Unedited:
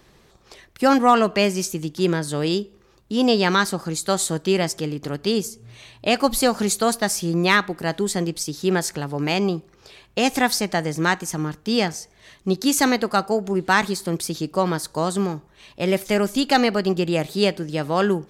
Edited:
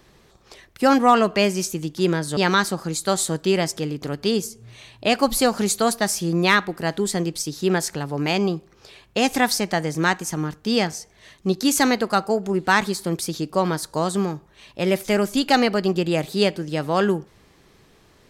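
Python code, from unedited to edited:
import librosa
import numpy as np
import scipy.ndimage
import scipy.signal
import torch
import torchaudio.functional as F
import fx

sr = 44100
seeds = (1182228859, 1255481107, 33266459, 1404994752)

y = fx.edit(x, sr, fx.cut(start_s=2.37, length_s=1.01), tone=tone)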